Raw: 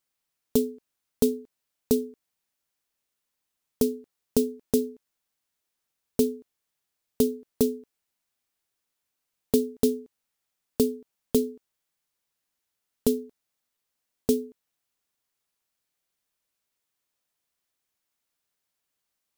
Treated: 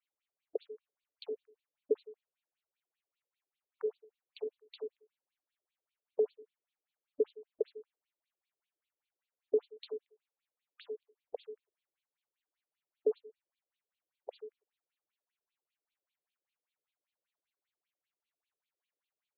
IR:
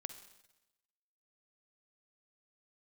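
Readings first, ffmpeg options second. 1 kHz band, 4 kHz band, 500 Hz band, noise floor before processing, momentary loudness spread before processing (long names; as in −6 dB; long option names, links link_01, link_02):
−10.5 dB, −15.5 dB, −8.5 dB, −83 dBFS, 11 LU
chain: -filter_complex "[0:a]acrossover=split=490[link_01][link_02];[link_02]acompressor=threshold=-32dB:ratio=6[link_03];[link_01][link_03]amix=inputs=2:normalize=0[link_04];[1:a]atrim=start_sample=2205,afade=type=out:start_time=0.16:duration=0.01,atrim=end_sample=7497[link_05];[link_04][link_05]afir=irnorm=-1:irlink=0,afftfilt=real='re*between(b*sr/1024,400*pow(3300/400,0.5+0.5*sin(2*PI*5.1*pts/sr))/1.41,400*pow(3300/400,0.5+0.5*sin(2*PI*5.1*pts/sr))*1.41)':imag='im*between(b*sr/1024,400*pow(3300/400,0.5+0.5*sin(2*PI*5.1*pts/sr))/1.41,400*pow(3300/400,0.5+0.5*sin(2*PI*5.1*pts/sr))*1.41)':win_size=1024:overlap=0.75,volume=2dB"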